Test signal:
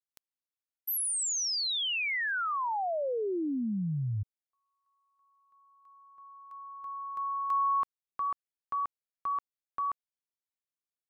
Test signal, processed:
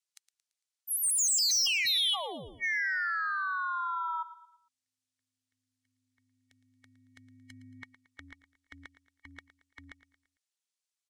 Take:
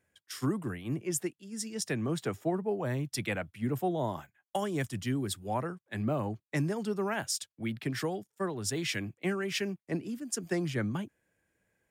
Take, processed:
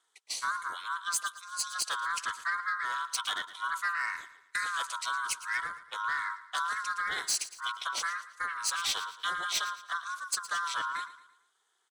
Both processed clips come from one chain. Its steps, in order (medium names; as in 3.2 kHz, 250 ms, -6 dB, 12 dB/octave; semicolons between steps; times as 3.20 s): split-band scrambler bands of 1 kHz; frequency weighting ITU-R 468; saturation -21.5 dBFS; ring modulator 180 Hz; feedback delay 113 ms, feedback 42%, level -15 dB